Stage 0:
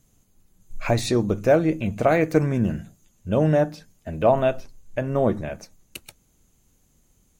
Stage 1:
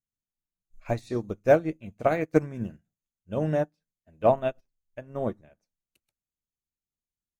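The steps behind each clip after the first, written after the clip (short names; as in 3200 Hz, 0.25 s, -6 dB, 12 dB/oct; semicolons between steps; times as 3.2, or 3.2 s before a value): upward expander 2.5:1, over -37 dBFS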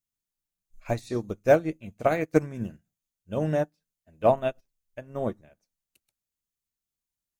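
high shelf 4100 Hz +6.5 dB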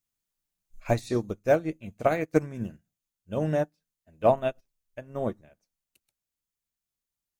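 vocal rider 0.5 s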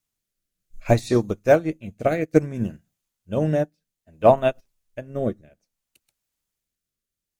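rotary speaker horn 0.6 Hz; gain +8 dB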